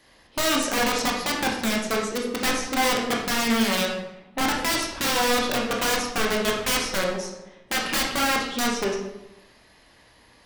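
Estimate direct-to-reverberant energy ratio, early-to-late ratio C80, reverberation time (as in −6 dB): −1.5 dB, 6.0 dB, 0.90 s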